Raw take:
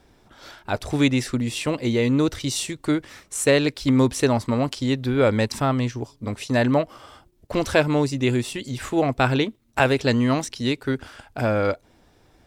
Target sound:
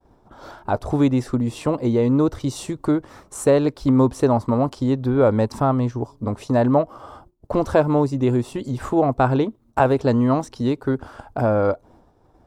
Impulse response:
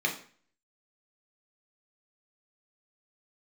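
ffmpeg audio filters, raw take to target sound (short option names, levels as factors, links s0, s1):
-filter_complex "[0:a]agate=range=0.0224:threshold=0.00316:ratio=3:detection=peak,highshelf=f=1500:t=q:w=1.5:g=-11.5,asplit=2[s0][s1];[s1]acompressor=threshold=0.0282:ratio=6,volume=1.12[s2];[s0][s2]amix=inputs=2:normalize=0"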